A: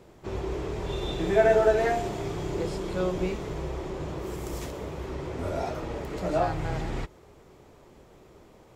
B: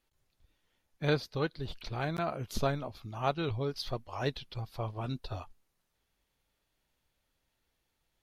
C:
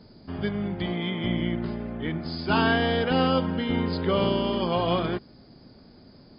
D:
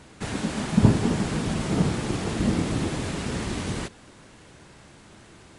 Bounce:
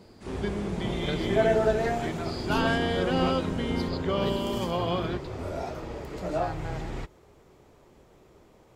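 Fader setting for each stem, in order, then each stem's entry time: −3.0, −5.0, −4.0, −17.0 decibels; 0.00, 0.00, 0.00, 0.00 seconds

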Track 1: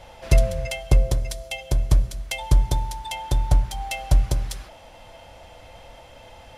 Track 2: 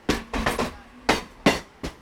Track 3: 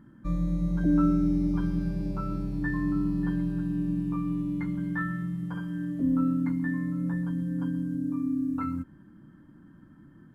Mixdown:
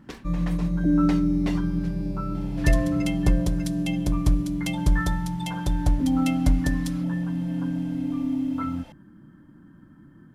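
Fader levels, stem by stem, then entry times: −4.0, −16.0, +2.5 decibels; 2.35, 0.00, 0.00 seconds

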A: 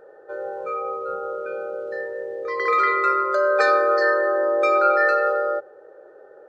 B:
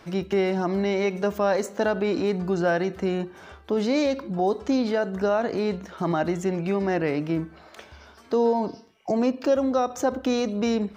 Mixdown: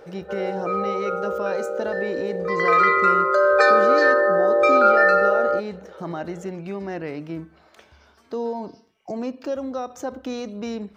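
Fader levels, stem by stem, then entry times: +2.5, −6.0 decibels; 0.00, 0.00 seconds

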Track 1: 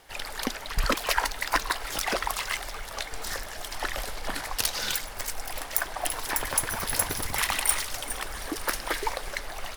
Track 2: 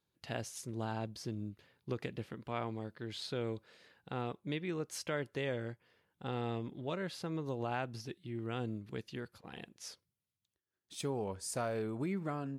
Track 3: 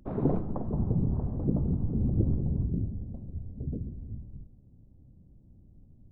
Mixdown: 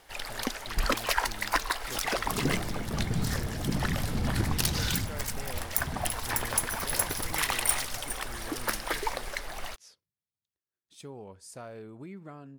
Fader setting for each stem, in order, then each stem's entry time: −2.0, −7.0, −3.0 decibels; 0.00, 0.00, 2.20 seconds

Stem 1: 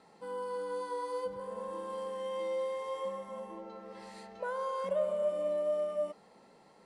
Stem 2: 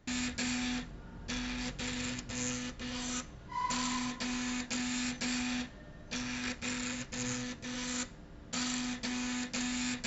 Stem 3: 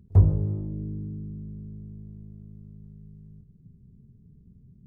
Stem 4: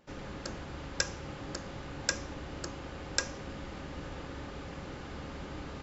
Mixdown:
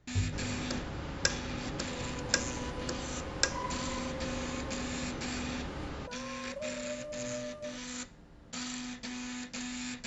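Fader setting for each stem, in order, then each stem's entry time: −9.5, −4.0, −15.5, +2.0 decibels; 1.65, 0.00, 0.00, 0.25 seconds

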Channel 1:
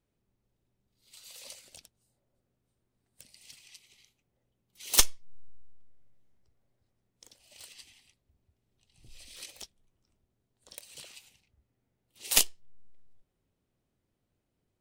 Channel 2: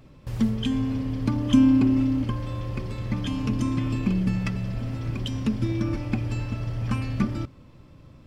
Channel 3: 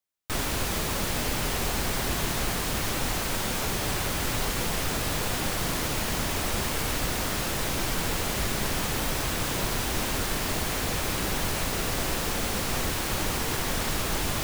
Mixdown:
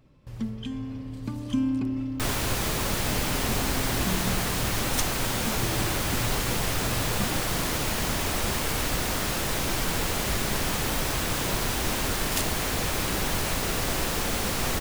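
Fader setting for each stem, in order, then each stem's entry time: −8.5, −8.5, +1.0 decibels; 0.00, 0.00, 1.90 seconds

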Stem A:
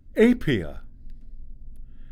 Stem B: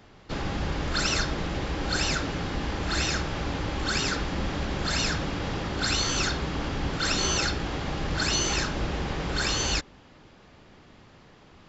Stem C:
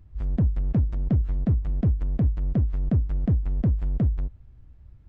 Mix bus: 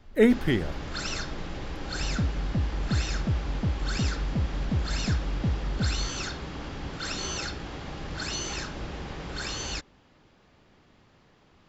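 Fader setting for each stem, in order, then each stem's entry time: −2.0, −7.0, −5.5 decibels; 0.00, 0.00, 1.80 seconds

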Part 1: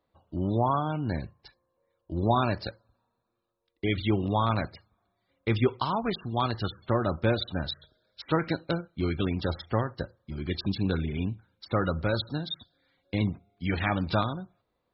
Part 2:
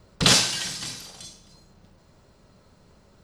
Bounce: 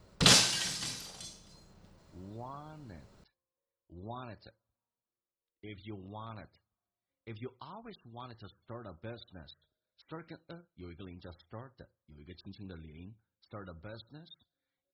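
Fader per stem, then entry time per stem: −19.5, −4.5 decibels; 1.80, 0.00 seconds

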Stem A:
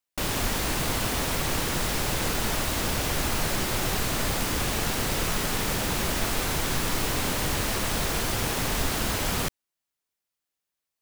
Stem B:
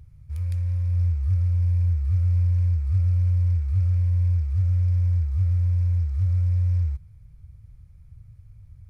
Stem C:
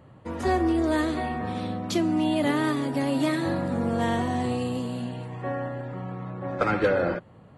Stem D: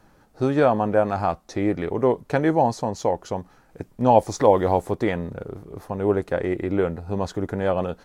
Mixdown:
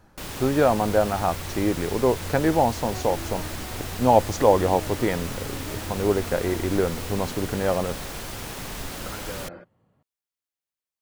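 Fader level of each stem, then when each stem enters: −7.5, −18.5, −15.5, −1.0 decibels; 0.00, 0.00, 2.45, 0.00 seconds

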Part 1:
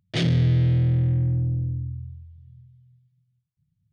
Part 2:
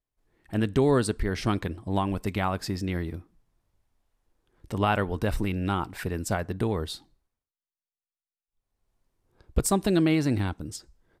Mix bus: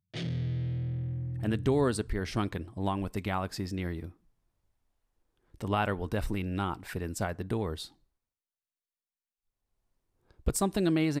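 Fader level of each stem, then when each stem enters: −13.0, −4.5 decibels; 0.00, 0.90 seconds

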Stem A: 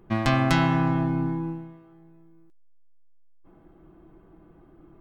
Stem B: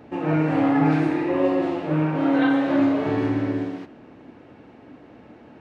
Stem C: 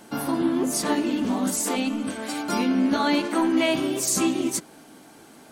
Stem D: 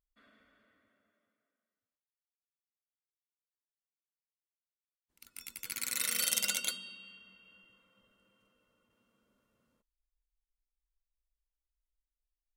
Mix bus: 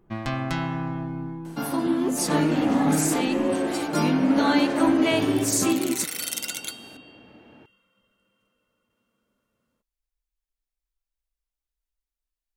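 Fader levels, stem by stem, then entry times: −6.5, −4.5, −0.5, +1.0 decibels; 0.00, 2.05, 1.45, 0.00 seconds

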